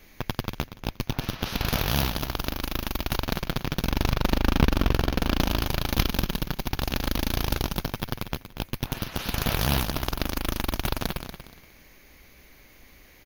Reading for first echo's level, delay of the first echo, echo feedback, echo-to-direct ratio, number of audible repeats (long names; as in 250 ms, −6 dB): −10.5 dB, 237 ms, 24%, −10.0 dB, 2